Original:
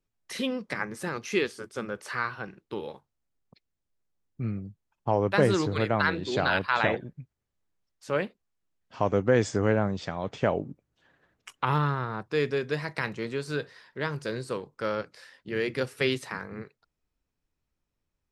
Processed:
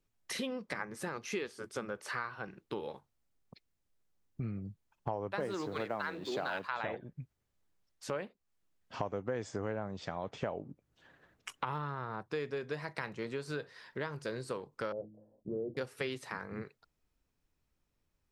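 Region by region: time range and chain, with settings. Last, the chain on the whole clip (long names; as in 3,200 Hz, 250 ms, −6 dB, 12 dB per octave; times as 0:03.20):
0:05.40–0:06.68: mu-law and A-law mismatch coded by mu + high-pass filter 170 Hz
0:14.92–0:15.77: elliptic low-pass filter 670 Hz, stop band 70 dB + hum removal 53.29 Hz, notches 6
whole clip: dynamic equaliser 800 Hz, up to +5 dB, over −38 dBFS, Q 0.74; downward compressor 4 to 1, threshold −39 dBFS; level +2 dB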